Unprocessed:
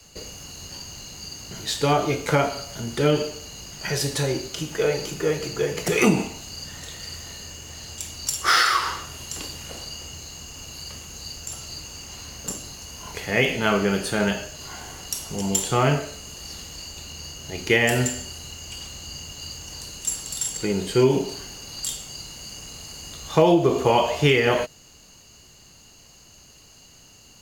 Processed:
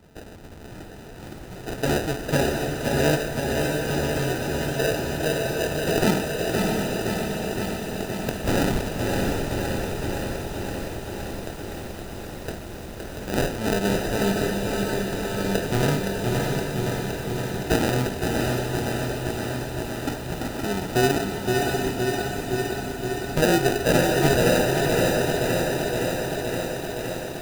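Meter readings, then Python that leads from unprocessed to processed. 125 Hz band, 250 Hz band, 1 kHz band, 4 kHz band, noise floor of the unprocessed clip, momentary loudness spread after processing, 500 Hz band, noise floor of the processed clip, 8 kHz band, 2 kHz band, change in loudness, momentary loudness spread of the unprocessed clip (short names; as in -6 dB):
+2.5 dB, +2.5 dB, -1.0 dB, -2.5 dB, -51 dBFS, 14 LU, +1.0 dB, -38 dBFS, -4.5 dB, -0.5 dB, -0.5 dB, 17 LU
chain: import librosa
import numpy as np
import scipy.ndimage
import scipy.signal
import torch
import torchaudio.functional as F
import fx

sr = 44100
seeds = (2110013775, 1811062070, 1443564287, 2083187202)

y = fx.sample_hold(x, sr, seeds[0], rate_hz=1100.0, jitter_pct=0)
y = fx.echo_diffused(y, sr, ms=664, feedback_pct=51, wet_db=-3.5)
y = fx.echo_crushed(y, sr, ms=517, feedback_pct=80, bits=7, wet_db=-5)
y = y * 10.0 ** (-3.0 / 20.0)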